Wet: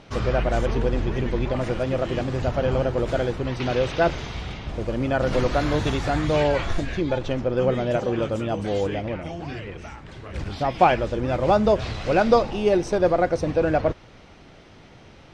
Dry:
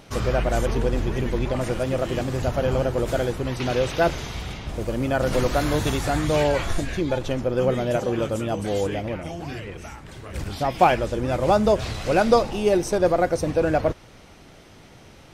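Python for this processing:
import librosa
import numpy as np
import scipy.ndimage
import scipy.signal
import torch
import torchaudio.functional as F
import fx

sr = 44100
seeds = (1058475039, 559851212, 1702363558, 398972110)

y = scipy.signal.sosfilt(scipy.signal.butter(2, 4800.0, 'lowpass', fs=sr, output='sos'), x)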